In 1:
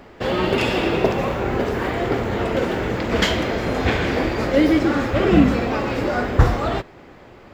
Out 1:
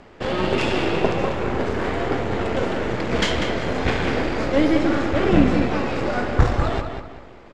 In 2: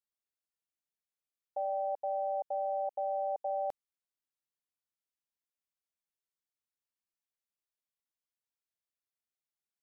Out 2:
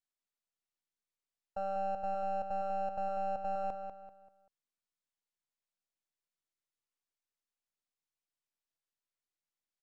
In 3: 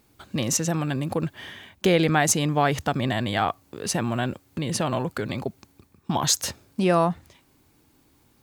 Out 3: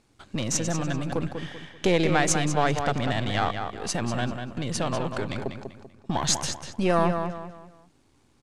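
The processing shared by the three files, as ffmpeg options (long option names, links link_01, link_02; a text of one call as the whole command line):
ffmpeg -i in.wav -filter_complex "[0:a]aeval=exprs='if(lt(val(0),0),0.447*val(0),val(0))':channel_layout=same,lowpass=frequency=9300:width=0.5412,lowpass=frequency=9300:width=1.3066,asplit=2[link_01][link_02];[link_02]adelay=194,lowpass=frequency=4600:poles=1,volume=-6.5dB,asplit=2[link_03][link_04];[link_04]adelay=194,lowpass=frequency=4600:poles=1,volume=0.36,asplit=2[link_05][link_06];[link_06]adelay=194,lowpass=frequency=4600:poles=1,volume=0.36,asplit=2[link_07][link_08];[link_08]adelay=194,lowpass=frequency=4600:poles=1,volume=0.36[link_09];[link_01][link_03][link_05][link_07][link_09]amix=inputs=5:normalize=0" out.wav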